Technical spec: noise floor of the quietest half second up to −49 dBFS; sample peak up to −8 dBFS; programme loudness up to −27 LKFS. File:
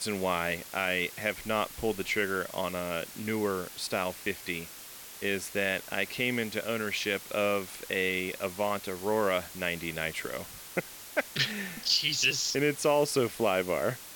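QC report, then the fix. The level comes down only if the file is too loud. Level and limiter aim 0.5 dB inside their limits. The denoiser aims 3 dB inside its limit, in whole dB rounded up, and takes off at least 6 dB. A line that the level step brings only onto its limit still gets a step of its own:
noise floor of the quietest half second −46 dBFS: out of spec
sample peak −14.0 dBFS: in spec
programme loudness −30.5 LKFS: in spec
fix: broadband denoise 6 dB, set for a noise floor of −46 dBFS

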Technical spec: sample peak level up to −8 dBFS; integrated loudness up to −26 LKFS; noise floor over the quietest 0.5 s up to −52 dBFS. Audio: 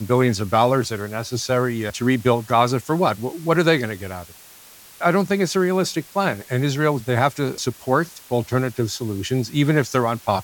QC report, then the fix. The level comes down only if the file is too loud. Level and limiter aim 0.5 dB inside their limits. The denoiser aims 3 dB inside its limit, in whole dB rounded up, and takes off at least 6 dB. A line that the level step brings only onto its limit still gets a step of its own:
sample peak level −3.5 dBFS: out of spec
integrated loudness −21.0 LKFS: out of spec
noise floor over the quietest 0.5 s −46 dBFS: out of spec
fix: broadband denoise 6 dB, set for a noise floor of −46 dBFS
level −5.5 dB

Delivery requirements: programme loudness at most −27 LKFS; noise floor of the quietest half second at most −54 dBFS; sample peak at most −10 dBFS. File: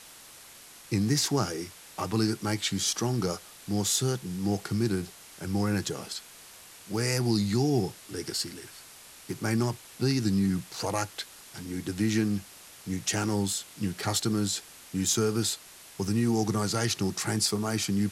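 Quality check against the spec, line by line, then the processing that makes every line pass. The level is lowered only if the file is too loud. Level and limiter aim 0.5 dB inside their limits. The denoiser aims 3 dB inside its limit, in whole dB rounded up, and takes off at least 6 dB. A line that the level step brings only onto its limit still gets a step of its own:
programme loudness −29.0 LKFS: in spec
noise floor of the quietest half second −50 dBFS: out of spec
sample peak −13.0 dBFS: in spec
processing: broadband denoise 7 dB, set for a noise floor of −50 dBFS

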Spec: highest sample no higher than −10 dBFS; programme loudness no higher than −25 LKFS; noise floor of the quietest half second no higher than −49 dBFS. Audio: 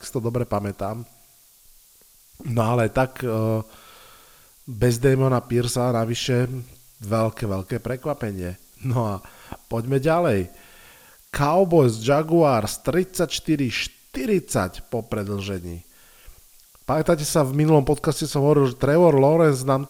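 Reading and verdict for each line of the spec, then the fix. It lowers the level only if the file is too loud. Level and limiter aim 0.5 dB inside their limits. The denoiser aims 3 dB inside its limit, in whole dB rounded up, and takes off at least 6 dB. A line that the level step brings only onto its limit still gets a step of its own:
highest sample −4.5 dBFS: out of spec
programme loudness −22.0 LKFS: out of spec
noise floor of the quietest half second −54 dBFS: in spec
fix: level −3.5 dB
brickwall limiter −10.5 dBFS

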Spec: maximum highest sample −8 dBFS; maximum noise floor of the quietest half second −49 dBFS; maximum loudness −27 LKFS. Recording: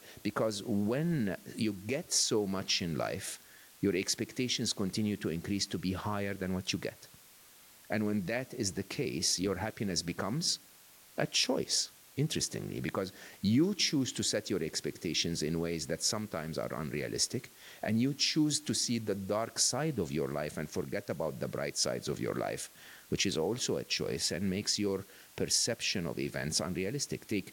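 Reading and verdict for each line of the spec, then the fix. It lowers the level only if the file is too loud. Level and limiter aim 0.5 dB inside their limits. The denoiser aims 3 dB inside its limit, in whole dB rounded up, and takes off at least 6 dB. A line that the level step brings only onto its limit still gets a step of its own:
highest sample −16.5 dBFS: in spec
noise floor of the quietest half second −58 dBFS: in spec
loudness −33.0 LKFS: in spec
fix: no processing needed

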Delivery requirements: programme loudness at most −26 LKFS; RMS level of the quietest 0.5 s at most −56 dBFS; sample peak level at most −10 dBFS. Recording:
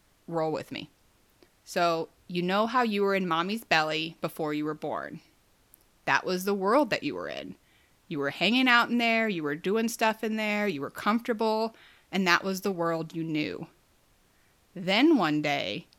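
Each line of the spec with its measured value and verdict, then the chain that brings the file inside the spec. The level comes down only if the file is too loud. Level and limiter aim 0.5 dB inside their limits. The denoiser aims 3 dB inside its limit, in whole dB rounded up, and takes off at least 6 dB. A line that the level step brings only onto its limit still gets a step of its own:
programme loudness −27.5 LKFS: in spec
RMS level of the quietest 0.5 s −65 dBFS: in spec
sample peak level −6.0 dBFS: out of spec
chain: brickwall limiter −10.5 dBFS

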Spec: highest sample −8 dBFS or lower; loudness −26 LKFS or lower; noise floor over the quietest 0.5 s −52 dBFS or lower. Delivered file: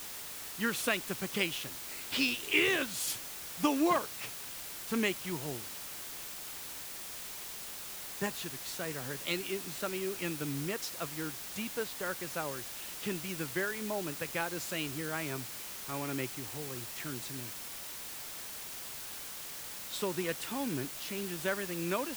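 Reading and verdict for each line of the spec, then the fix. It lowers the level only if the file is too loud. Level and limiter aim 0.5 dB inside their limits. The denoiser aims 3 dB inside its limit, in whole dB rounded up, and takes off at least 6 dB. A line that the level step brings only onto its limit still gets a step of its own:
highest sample −13.0 dBFS: in spec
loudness −35.5 LKFS: in spec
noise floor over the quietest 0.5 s −44 dBFS: out of spec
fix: broadband denoise 11 dB, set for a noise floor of −44 dBFS

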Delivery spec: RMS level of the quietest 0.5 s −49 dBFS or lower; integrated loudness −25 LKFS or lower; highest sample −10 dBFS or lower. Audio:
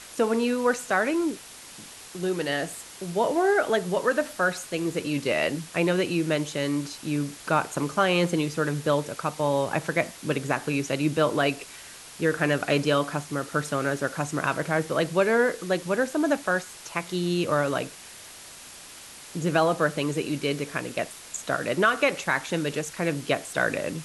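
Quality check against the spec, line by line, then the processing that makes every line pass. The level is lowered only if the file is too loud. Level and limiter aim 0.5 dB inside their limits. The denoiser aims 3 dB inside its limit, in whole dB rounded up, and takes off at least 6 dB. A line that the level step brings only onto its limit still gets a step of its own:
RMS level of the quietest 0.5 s −45 dBFS: out of spec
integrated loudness −26.0 LKFS: in spec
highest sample −9.0 dBFS: out of spec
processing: broadband denoise 7 dB, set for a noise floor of −45 dBFS
brickwall limiter −10.5 dBFS

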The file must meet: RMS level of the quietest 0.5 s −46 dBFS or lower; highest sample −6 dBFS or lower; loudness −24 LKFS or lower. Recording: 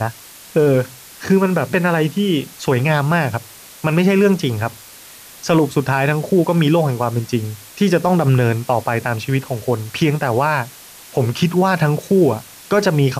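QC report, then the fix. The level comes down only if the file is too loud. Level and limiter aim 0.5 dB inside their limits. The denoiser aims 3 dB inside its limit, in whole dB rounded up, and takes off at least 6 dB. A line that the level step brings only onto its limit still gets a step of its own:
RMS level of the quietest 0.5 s −40 dBFS: out of spec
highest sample −4.5 dBFS: out of spec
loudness −17.5 LKFS: out of spec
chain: level −7 dB

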